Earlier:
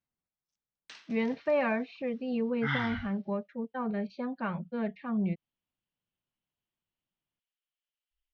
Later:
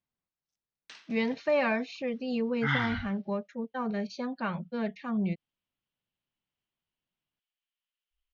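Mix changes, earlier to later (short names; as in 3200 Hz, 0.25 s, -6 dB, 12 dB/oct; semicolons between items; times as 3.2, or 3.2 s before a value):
speech: remove air absorption 320 m; second sound +3.0 dB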